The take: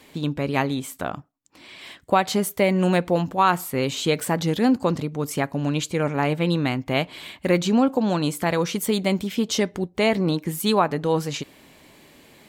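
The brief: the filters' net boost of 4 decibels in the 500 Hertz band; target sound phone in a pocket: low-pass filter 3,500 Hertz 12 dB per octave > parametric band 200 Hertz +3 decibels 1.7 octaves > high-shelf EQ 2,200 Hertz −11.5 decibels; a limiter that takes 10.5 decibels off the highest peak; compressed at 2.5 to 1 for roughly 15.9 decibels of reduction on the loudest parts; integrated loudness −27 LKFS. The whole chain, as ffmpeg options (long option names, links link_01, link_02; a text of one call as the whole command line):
ffmpeg -i in.wav -af "equalizer=frequency=500:width_type=o:gain=4.5,acompressor=threshold=-37dB:ratio=2.5,alimiter=level_in=5dB:limit=-24dB:level=0:latency=1,volume=-5dB,lowpass=3500,equalizer=frequency=200:width_type=o:width=1.7:gain=3,highshelf=frequency=2200:gain=-11.5,volume=12dB" out.wav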